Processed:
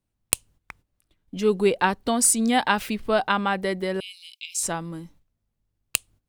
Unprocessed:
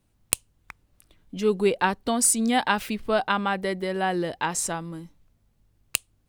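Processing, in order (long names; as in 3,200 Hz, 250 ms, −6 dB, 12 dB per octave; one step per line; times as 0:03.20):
0:04.00–0:04.63: Chebyshev high-pass filter 2,200 Hz, order 10
noise gate −54 dBFS, range −13 dB
level +1.5 dB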